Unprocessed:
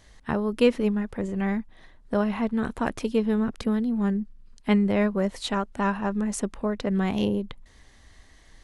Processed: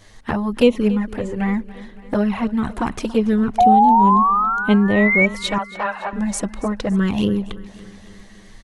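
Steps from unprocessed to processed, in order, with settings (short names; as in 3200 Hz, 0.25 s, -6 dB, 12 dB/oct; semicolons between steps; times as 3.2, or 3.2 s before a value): 3.58–5.26 painted sound rise 700–2300 Hz -16 dBFS; in parallel at -1.5 dB: compressor 6:1, threshold -30 dBFS, peak gain reduction 16.5 dB; 5.58–6.13 on the sum: Chebyshev band-pass 460–4300 Hz, order 5; envelope flanger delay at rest 10.5 ms, full sweep at -15.5 dBFS; on a send: feedback echo 0.281 s, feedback 60%, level -18.5 dB; on the sum: gain +5.5 dB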